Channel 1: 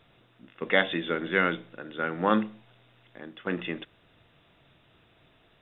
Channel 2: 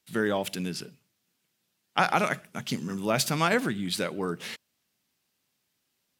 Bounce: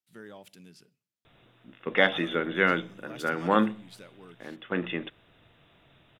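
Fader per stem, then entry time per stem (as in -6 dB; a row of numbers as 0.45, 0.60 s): +1.0, -19.5 dB; 1.25, 0.00 s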